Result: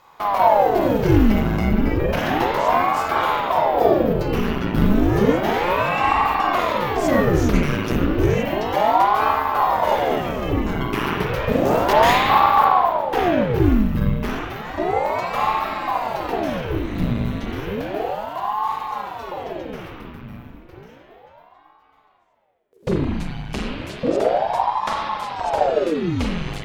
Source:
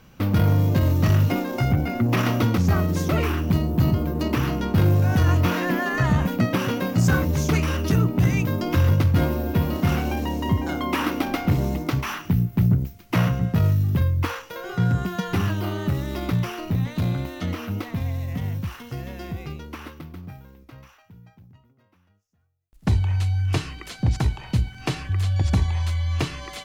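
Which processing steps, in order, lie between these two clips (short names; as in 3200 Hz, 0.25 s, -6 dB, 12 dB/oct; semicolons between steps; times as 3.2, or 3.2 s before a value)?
11.65–12.65 sample leveller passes 3; spring tank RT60 1.9 s, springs 39/47 ms, chirp 50 ms, DRR -4.5 dB; ring modulator with a swept carrier 520 Hz, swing 90%, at 0.32 Hz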